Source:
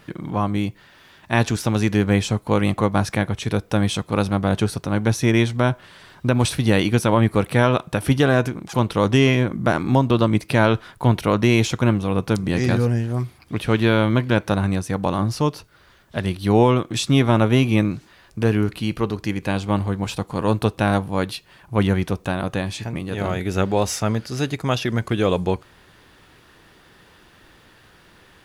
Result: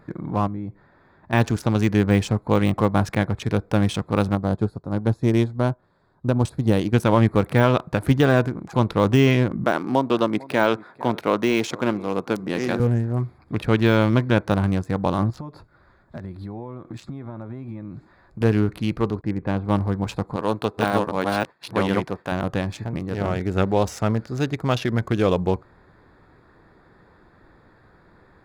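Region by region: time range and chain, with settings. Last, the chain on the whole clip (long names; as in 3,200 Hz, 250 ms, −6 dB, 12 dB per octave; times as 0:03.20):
0:00.47–0:01.33: high-shelf EQ 2,000 Hz −7.5 dB + downward compressor 3 to 1, threshold −28 dBFS
0:04.35–0:06.93: parametric band 2,100 Hz −8.5 dB 1.2 octaves + expander for the loud parts, over −37 dBFS
0:09.64–0:12.80: high-pass filter 270 Hz + single-tap delay 451 ms −20.5 dB
0:15.30–0:18.41: notch filter 450 Hz, Q 8.6 + downward compressor 16 to 1, threshold −29 dBFS
0:19.21–0:19.65: downward expander −40 dBFS + high-frequency loss of the air 470 metres
0:20.36–0:22.32: delay that plays each chunk backwards 380 ms, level −0.5 dB + high-pass filter 360 Hz 6 dB per octave + downward expander −41 dBFS
whole clip: adaptive Wiener filter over 15 samples; de-essing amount 60%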